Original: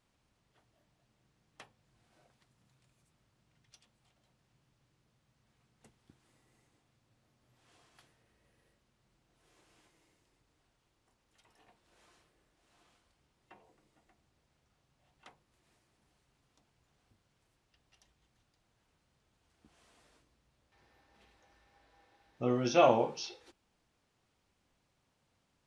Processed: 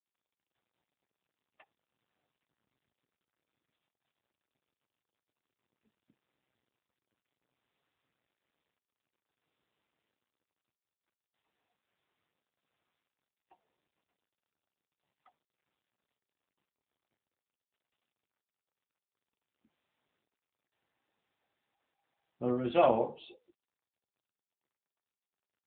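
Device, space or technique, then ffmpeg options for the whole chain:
mobile call with aggressive noise cancelling: -af "highpass=120,afftdn=nr=25:nf=-48" -ar 8000 -c:a libopencore_amrnb -b:a 7950

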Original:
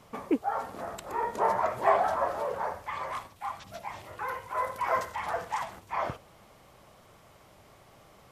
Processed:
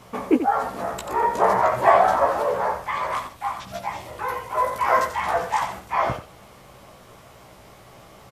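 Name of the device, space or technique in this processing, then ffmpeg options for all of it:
slapback doubling: -filter_complex "[0:a]asplit=3[s0][s1][s2];[s1]adelay=16,volume=0.708[s3];[s2]adelay=89,volume=0.376[s4];[s0][s3][s4]amix=inputs=3:normalize=0,asettb=1/sr,asplit=3[s5][s6][s7];[s5]atrim=end=3.964[s8];[s6]atrim=start=3.96:end=4.73,asetpts=PTS-STARTPTS,afade=t=in:d=0.004:c=qsin,afade=t=out:st=0.766:d=0.004:c=qsin,equalizer=f=1500:w=1.5:g=-5.5[s9];[s7]atrim=start=4.726[s10];[s8][s9]acrossfade=d=0.004:c1=hsin:c2=qsin[s11];[s11][s10]acrossfade=d=0.004:c1=qsin:c2=hsin,volume=2.24"

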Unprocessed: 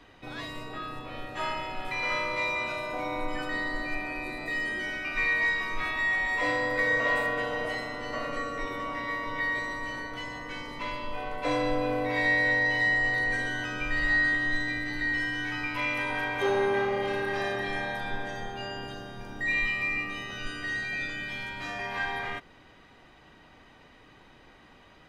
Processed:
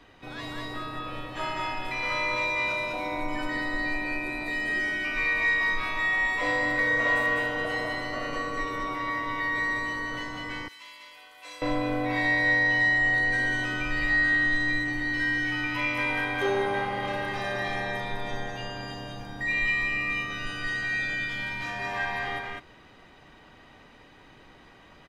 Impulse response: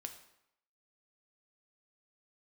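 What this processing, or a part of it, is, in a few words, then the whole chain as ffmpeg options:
ducked delay: -filter_complex "[0:a]asplit=3[s0][s1][s2];[s1]adelay=201,volume=0.794[s3];[s2]apad=whole_len=1115020[s4];[s3][s4]sidechaincompress=threshold=0.0355:ratio=8:attack=16:release=120[s5];[s0][s5]amix=inputs=2:normalize=0,asettb=1/sr,asplit=3[s6][s7][s8];[s6]atrim=end=10.684[s9];[s7]atrim=start=10.68:end=11.62,asetpts=PTS-STARTPTS,afade=t=in:d=0.004:c=qsin,afade=t=out:st=0.936:d=0.004:c=qsin,aderivative[s10];[s8]atrim=start=11.616[s11];[s9][s10]acrossfade=d=0.004:c1=hsin:c2=qsin[s12];[s12][s11]acrossfade=d=0.004:c1=qsin:c2=hsin"

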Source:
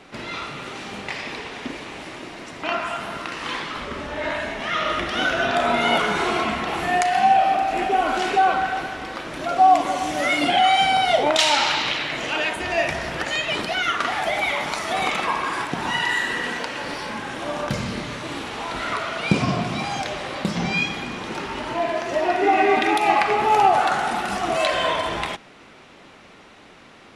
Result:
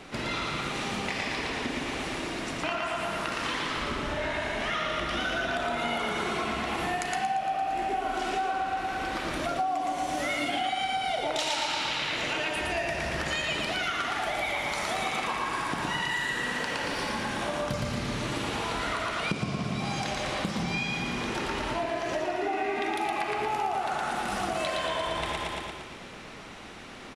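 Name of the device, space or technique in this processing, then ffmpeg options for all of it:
ASMR close-microphone chain: -af "lowshelf=f=120:g=6.5,aecho=1:1:115|230|345|460|575|690|805|920:0.708|0.396|0.222|0.124|0.0696|0.039|0.0218|0.0122,acompressor=threshold=0.0398:ratio=6,highshelf=f=6100:g=5"

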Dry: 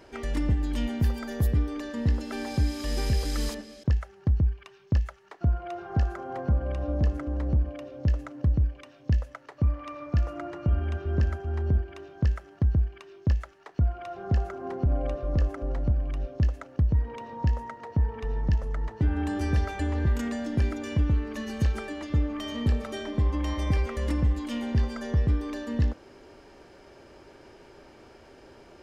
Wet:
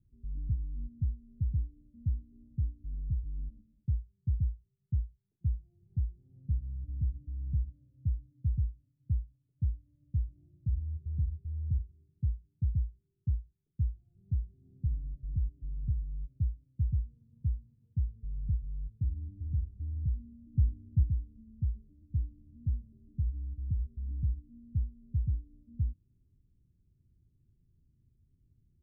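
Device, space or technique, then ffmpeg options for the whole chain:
the neighbour's flat through the wall: -filter_complex "[0:a]asettb=1/sr,asplit=3[s0][s1][s2];[s0]atrim=end=20.544[s3];[s1]atrim=start=20.54:end=21.03,asetpts=PTS-STARTPTS,afade=t=in:d=0.004:c=qsin,afade=t=out:st=0.486:d=0.004:c=qsin,lowshelf=f=330:g=6[s4];[s2]atrim=start=21.026[s5];[s3][s4]acrossfade=d=0.004:c1=hsin:c2=qsin[s6];[s6][s5]acrossfade=d=0.004:c1=qsin:c2=hsin,lowpass=f=160:w=0.5412,lowpass=f=160:w=1.3066,equalizer=f=110:t=o:w=0.77:g=3,volume=0.398"

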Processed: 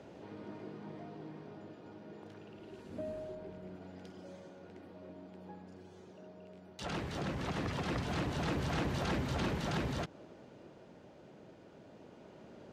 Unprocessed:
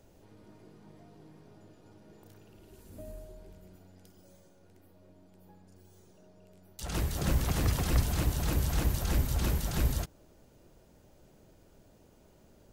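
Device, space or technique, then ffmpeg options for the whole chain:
AM radio: -filter_complex "[0:a]asettb=1/sr,asplit=3[s0][s1][s2];[s0]atrim=end=3.354[s3];[s1]atrim=start=3.35:end=3.82,asetpts=PTS-STARTPTS,afade=t=in:d=0.004:c=qsin,afade=t=out:st=0.466:d=0.004:c=qsin,equalizer=f=6900:w=0.33:g=-4.5[s4];[s2]atrim=start=3.816[s5];[s3][s4]acrossfade=d=0.004:c1=hsin:c2=qsin[s6];[s6][s5]acrossfade=d=0.004:c1=qsin:c2=hsin,highpass=160,lowpass=3300,acompressor=threshold=0.00891:ratio=4,asoftclip=type=tanh:threshold=0.015,tremolo=f=0.22:d=0.37,volume=3.35"

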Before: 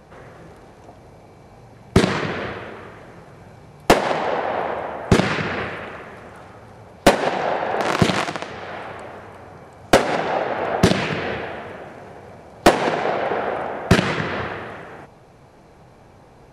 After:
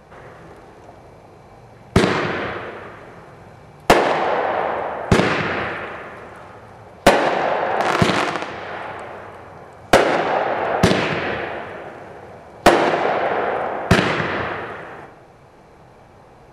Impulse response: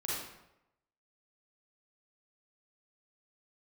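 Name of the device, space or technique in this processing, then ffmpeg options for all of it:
filtered reverb send: -filter_complex "[0:a]asplit=2[s0][s1];[s1]highpass=f=290:w=0.5412,highpass=f=290:w=1.3066,lowpass=3500[s2];[1:a]atrim=start_sample=2205[s3];[s2][s3]afir=irnorm=-1:irlink=0,volume=0.473[s4];[s0][s4]amix=inputs=2:normalize=0"

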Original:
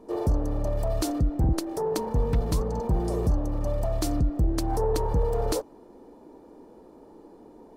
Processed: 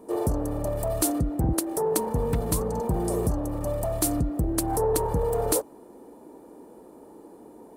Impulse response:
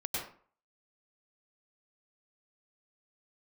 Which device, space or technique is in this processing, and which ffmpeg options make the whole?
budget condenser microphone: -af "highpass=f=110:p=1,highshelf=f=7100:t=q:w=1.5:g=9,volume=1.33"

